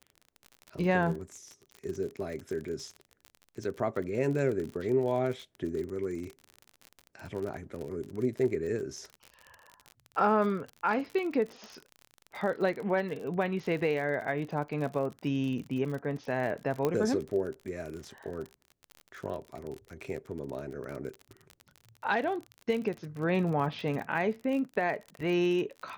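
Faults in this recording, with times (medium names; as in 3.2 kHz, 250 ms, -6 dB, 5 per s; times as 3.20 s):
crackle 44 per s -36 dBFS
16.85 s: pop -16 dBFS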